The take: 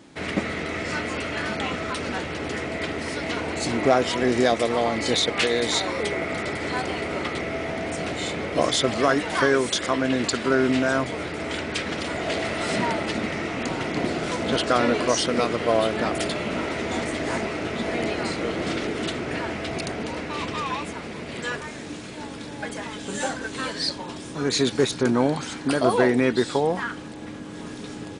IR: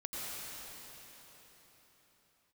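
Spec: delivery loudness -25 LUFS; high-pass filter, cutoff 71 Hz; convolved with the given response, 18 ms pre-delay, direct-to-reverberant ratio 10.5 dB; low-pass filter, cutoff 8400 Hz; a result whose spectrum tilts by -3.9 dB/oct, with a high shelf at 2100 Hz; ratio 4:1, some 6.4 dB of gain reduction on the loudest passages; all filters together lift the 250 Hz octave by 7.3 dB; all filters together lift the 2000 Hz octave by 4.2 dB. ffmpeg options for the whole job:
-filter_complex "[0:a]highpass=71,lowpass=8.4k,equalizer=f=250:t=o:g=8.5,equalizer=f=2k:t=o:g=8.5,highshelf=f=2.1k:g=-6.5,acompressor=threshold=-18dB:ratio=4,asplit=2[a][b];[1:a]atrim=start_sample=2205,adelay=18[c];[b][c]afir=irnorm=-1:irlink=0,volume=-13dB[d];[a][d]amix=inputs=2:normalize=0,volume=-1.5dB"

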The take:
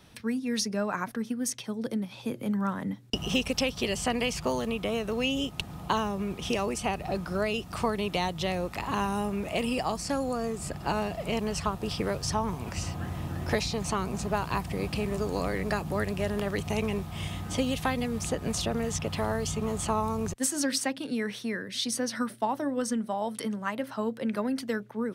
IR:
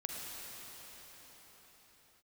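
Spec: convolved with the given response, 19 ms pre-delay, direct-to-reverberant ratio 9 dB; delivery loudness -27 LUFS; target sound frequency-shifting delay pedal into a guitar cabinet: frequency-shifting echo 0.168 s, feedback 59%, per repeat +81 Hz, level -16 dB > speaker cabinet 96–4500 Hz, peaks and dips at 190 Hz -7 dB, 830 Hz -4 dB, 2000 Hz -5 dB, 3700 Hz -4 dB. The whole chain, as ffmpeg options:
-filter_complex "[0:a]asplit=2[a][b];[1:a]atrim=start_sample=2205,adelay=19[c];[b][c]afir=irnorm=-1:irlink=0,volume=-10.5dB[d];[a][d]amix=inputs=2:normalize=0,asplit=7[e][f][g][h][i][j][k];[f]adelay=168,afreqshift=81,volume=-16dB[l];[g]adelay=336,afreqshift=162,volume=-20.6dB[m];[h]adelay=504,afreqshift=243,volume=-25.2dB[n];[i]adelay=672,afreqshift=324,volume=-29.7dB[o];[j]adelay=840,afreqshift=405,volume=-34.3dB[p];[k]adelay=1008,afreqshift=486,volume=-38.9dB[q];[e][l][m][n][o][p][q]amix=inputs=7:normalize=0,highpass=96,equalizer=f=190:t=q:w=4:g=-7,equalizer=f=830:t=q:w=4:g=-4,equalizer=f=2k:t=q:w=4:g=-5,equalizer=f=3.7k:t=q:w=4:g=-4,lowpass=f=4.5k:w=0.5412,lowpass=f=4.5k:w=1.3066,volume=5dB"

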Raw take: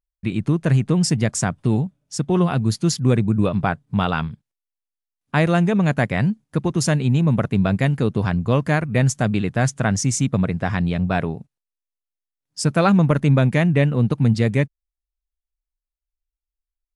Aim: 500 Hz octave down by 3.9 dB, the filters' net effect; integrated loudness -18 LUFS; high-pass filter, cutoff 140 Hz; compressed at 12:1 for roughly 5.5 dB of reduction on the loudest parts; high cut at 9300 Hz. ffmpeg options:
-af "highpass=140,lowpass=9.3k,equalizer=f=500:t=o:g=-5,acompressor=threshold=-20dB:ratio=12,volume=8dB"

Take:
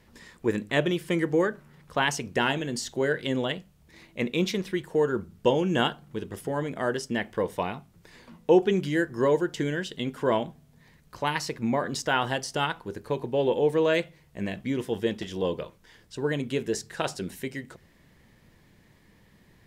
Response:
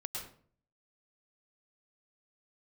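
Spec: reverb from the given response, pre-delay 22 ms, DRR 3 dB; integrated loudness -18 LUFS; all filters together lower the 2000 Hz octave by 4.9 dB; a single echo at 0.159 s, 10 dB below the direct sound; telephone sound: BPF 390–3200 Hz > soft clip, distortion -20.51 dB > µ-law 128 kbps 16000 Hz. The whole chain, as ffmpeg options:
-filter_complex "[0:a]equalizer=f=2k:t=o:g=-6,aecho=1:1:159:0.316,asplit=2[a][b];[1:a]atrim=start_sample=2205,adelay=22[c];[b][c]afir=irnorm=-1:irlink=0,volume=-3dB[d];[a][d]amix=inputs=2:normalize=0,highpass=390,lowpass=3.2k,asoftclip=threshold=-14.5dB,volume=12dB" -ar 16000 -c:a pcm_mulaw

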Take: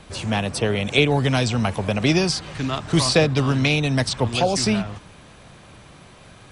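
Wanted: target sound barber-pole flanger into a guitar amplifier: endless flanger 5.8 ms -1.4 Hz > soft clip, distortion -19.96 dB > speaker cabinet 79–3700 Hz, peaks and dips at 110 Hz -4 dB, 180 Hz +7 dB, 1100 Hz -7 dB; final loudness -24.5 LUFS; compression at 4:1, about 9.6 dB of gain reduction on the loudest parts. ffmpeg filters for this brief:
-filter_complex "[0:a]acompressor=threshold=-24dB:ratio=4,asplit=2[a][b];[b]adelay=5.8,afreqshift=-1.4[c];[a][c]amix=inputs=2:normalize=1,asoftclip=threshold=-21dB,highpass=79,equalizer=f=110:t=q:w=4:g=-4,equalizer=f=180:t=q:w=4:g=7,equalizer=f=1.1k:t=q:w=4:g=-7,lowpass=f=3.7k:w=0.5412,lowpass=f=3.7k:w=1.3066,volume=7dB"

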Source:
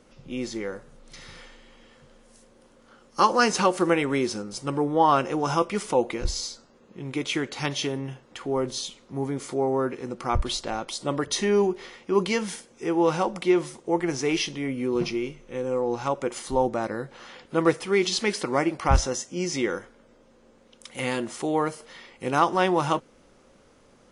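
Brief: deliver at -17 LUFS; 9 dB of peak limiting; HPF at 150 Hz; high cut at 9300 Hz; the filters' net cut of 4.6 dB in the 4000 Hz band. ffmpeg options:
-af "highpass=150,lowpass=9.3k,equalizer=f=4k:t=o:g=-6,volume=11.5dB,alimiter=limit=-3.5dB:level=0:latency=1"

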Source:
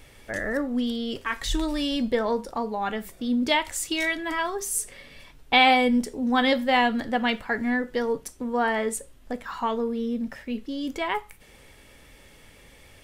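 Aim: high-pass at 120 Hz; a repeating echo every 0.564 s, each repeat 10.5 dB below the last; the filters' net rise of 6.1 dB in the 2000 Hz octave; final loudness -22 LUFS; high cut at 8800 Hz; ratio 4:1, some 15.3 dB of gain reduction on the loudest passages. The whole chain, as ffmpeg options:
-af "highpass=120,lowpass=8.8k,equalizer=f=2k:t=o:g=7,acompressor=threshold=-29dB:ratio=4,aecho=1:1:564|1128|1692:0.299|0.0896|0.0269,volume=9.5dB"

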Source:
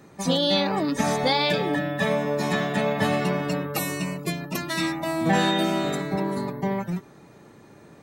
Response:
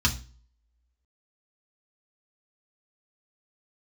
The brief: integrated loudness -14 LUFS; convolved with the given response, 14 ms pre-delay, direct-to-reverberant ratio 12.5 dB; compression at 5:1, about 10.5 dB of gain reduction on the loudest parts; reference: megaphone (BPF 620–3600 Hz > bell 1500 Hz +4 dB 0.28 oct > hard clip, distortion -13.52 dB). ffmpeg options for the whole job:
-filter_complex "[0:a]acompressor=threshold=-30dB:ratio=5,asplit=2[a][b];[1:a]atrim=start_sample=2205,adelay=14[c];[b][c]afir=irnorm=-1:irlink=0,volume=-24.5dB[d];[a][d]amix=inputs=2:normalize=0,highpass=620,lowpass=3.6k,equalizer=f=1.5k:t=o:w=0.28:g=4,asoftclip=type=hard:threshold=-33dB,volume=24dB"

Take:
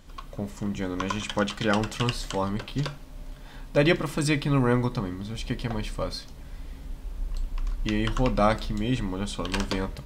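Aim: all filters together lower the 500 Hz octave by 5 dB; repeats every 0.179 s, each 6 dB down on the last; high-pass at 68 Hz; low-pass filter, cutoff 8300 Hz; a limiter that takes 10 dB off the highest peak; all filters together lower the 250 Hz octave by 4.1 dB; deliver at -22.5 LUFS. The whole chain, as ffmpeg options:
-af "highpass=68,lowpass=8.3k,equalizer=f=250:t=o:g=-4,equalizer=f=500:t=o:g=-5,alimiter=limit=-20.5dB:level=0:latency=1,aecho=1:1:179|358|537|716|895|1074:0.501|0.251|0.125|0.0626|0.0313|0.0157,volume=9.5dB"

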